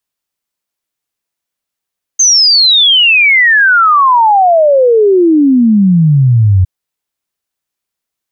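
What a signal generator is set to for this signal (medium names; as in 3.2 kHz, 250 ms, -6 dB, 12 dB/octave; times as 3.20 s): log sweep 6.4 kHz -> 89 Hz 4.46 s -4 dBFS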